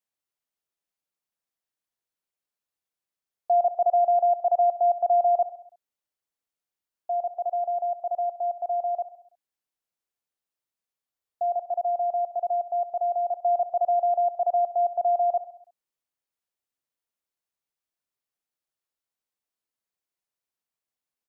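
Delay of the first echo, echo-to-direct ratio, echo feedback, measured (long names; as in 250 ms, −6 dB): 66 ms, −13.5 dB, 55%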